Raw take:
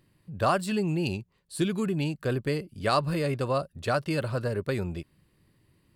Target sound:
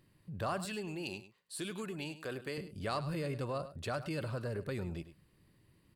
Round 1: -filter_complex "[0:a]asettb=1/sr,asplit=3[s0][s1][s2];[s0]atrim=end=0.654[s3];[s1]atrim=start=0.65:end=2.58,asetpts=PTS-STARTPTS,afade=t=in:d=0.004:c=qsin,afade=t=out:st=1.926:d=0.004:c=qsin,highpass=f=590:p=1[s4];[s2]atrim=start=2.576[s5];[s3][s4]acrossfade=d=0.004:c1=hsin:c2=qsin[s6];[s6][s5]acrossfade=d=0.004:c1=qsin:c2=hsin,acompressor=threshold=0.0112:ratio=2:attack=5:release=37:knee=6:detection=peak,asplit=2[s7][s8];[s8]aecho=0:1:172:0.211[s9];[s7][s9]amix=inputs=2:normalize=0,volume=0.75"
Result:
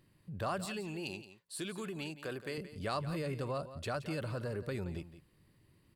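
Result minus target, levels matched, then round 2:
echo 69 ms late
-filter_complex "[0:a]asettb=1/sr,asplit=3[s0][s1][s2];[s0]atrim=end=0.654[s3];[s1]atrim=start=0.65:end=2.58,asetpts=PTS-STARTPTS,afade=t=in:d=0.004:c=qsin,afade=t=out:st=1.926:d=0.004:c=qsin,highpass=f=590:p=1[s4];[s2]atrim=start=2.576[s5];[s3][s4]acrossfade=d=0.004:c1=hsin:c2=qsin[s6];[s6][s5]acrossfade=d=0.004:c1=qsin:c2=hsin,acompressor=threshold=0.0112:ratio=2:attack=5:release=37:knee=6:detection=peak,asplit=2[s7][s8];[s8]aecho=0:1:103:0.211[s9];[s7][s9]amix=inputs=2:normalize=0,volume=0.75"

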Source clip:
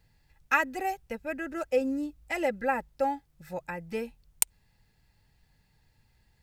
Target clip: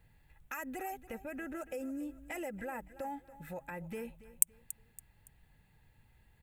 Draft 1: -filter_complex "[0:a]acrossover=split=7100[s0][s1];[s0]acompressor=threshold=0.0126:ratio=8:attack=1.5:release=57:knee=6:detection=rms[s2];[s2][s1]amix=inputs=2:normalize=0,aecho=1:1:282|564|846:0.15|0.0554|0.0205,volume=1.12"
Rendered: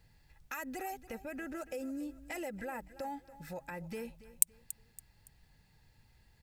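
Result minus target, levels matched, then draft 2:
4 kHz band +4.0 dB
-filter_complex "[0:a]acrossover=split=7100[s0][s1];[s0]acompressor=threshold=0.0126:ratio=8:attack=1.5:release=57:knee=6:detection=rms,lowpass=f=3700:w=0.5412,lowpass=f=3700:w=1.3066[s2];[s2][s1]amix=inputs=2:normalize=0,aecho=1:1:282|564|846:0.15|0.0554|0.0205,volume=1.12"

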